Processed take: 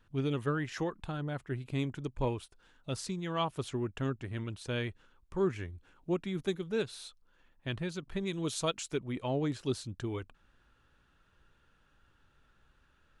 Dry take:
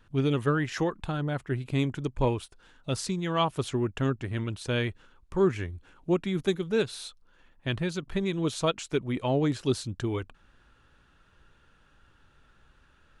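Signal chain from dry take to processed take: 8.27–8.94 s: treble shelf 4.3 kHz +9 dB; trim -6.5 dB

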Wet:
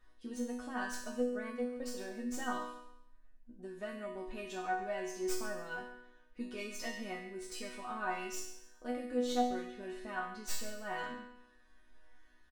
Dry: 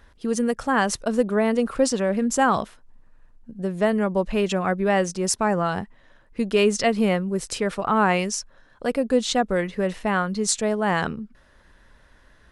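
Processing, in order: tracing distortion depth 0.057 ms; 1.22–1.97 s: gate -21 dBFS, range -13 dB; in parallel at +1 dB: compression, threshold -30 dBFS, peak gain reduction 14.5 dB; on the sum: chord resonator B3 major, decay 0.63 s; feedback delay 138 ms, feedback 29%, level -15.5 dB; trim +3 dB

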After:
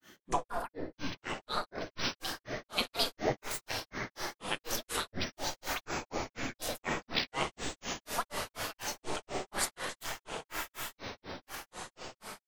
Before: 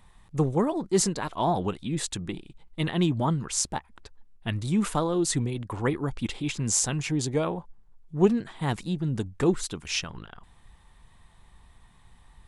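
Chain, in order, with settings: spectral gate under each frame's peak -15 dB weak; on a send: echo that smears into a reverb 1078 ms, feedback 58%, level -5 dB; on the sum: simulated room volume 530 m³, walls mixed, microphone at 0.88 m; granulator 202 ms, grains 4.1 per s, pitch spread up and down by 12 st; trim +6.5 dB

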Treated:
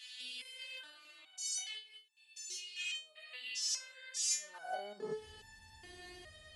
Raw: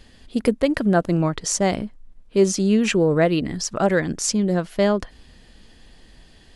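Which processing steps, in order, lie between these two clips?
spectrogram pixelated in time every 200 ms; compression 5:1, threshold -34 dBFS, peak gain reduction 15.5 dB; high-pass sweep 2.9 kHz -> 87 Hz, 4.26–5.30 s; hum notches 60/120/180/240/300 Hz; resonator arpeggio 2.4 Hz 250–890 Hz; trim +17 dB

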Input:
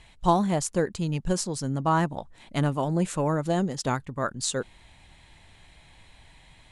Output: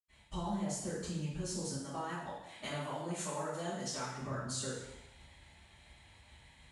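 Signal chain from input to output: high-pass 45 Hz; expander -47 dBFS; 1.65–4.10 s: bass shelf 500 Hz -12 dB; peak limiter -20 dBFS, peak gain reduction 10.5 dB; compression 6:1, threshold -40 dBFS, peak gain reduction 15 dB; reverberation RT60 0.90 s, pre-delay 76 ms, DRR -60 dB; trim +1.5 dB

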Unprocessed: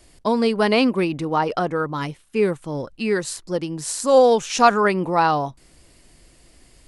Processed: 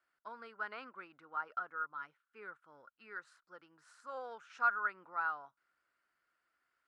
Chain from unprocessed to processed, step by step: band-pass filter 1.4 kHz, Q 9.3; trim -6.5 dB

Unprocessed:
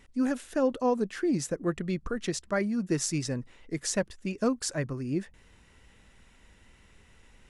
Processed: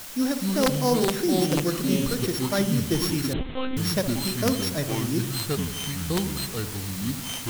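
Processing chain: sorted samples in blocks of 8 samples; on a send: filtered feedback delay 61 ms, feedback 71%, low-pass 980 Hz, level -9 dB; on the sum: integer overflow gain 16 dB; in parallel at +0.5 dB: word length cut 6-bit, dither triangular; on the sum: ever faster or slower copies 196 ms, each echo -5 st, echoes 2; 3.33–3.77 s: monotone LPC vocoder at 8 kHz 260 Hz; trim -4 dB

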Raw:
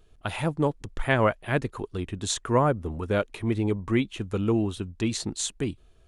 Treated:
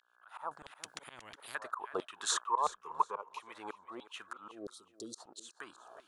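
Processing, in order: fade-in on the opening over 0.71 s; compression 8:1, threshold -28 dBFS, peak gain reduction 12 dB; resonant high shelf 1.6 kHz -10.5 dB, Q 3; mains buzz 60 Hz, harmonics 28, -66 dBFS -4 dB/octave; LFO high-pass saw down 1.5 Hz 570–3600 Hz; 4.51–5.18 s: elliptic band-stop 500–4400 Hz; slow attack 683 ms; 2.46–3.40 s: rippled EQ curve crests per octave 0.79, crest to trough 13 dB; thinning echo 367 ms, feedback 24%, high-pass 220 Hz, level -16 dB; 0.51–1.55 s: spectrum-flattening compressor 10:1; trim +12 dB

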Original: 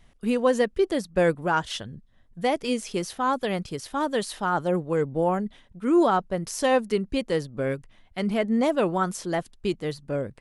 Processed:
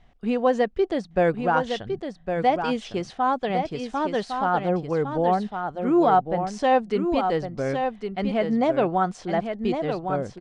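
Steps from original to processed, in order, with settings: peaking EQ 740 Hz +9.5 dB 0.23 oct; on a send: delay 1108 ms -6.5 dB; on the sum: resampled via 22.05 kHz; distance through air 130 m

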